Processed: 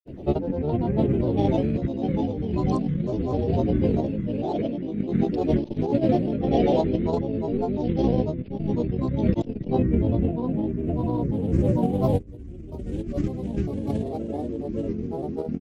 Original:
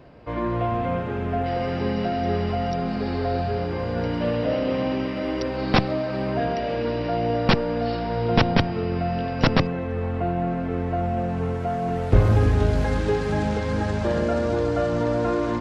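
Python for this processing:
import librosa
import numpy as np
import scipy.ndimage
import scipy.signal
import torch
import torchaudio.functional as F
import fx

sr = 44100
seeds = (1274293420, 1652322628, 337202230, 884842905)

y = fx.curve_eq(x, sr, hz=(110.0, 210.0, 330.0, 640.0, 1200.0, 3100.0, 4900.0, 9600.0), db=(0, 4, 6, -6, -25, -5, -14, 3))
y = fx.over_compress(y, sr, threshold_db=-27.0, ratio=-0.5)
y = fx.granulator(y, sr, seeds[0], grain_ms=100.0, per_s=20.0, spray_ms=100.0, spread_st=7)
y = y * librosa.db_to_amplitude(4.5)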